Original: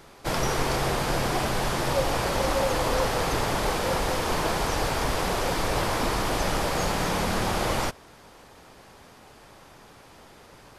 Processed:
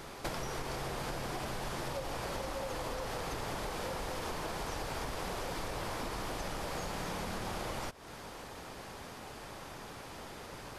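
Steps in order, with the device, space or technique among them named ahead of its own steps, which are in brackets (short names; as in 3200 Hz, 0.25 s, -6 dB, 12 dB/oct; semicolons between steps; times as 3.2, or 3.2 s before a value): serial compression, leveller first (compressor 2.5:1, threshold -27 dBFS, peak gain reduction 6 dB; compressor 8:1, threshold -39 dBFS, peak gain reduction 14.5 dB); gain +3.5 dB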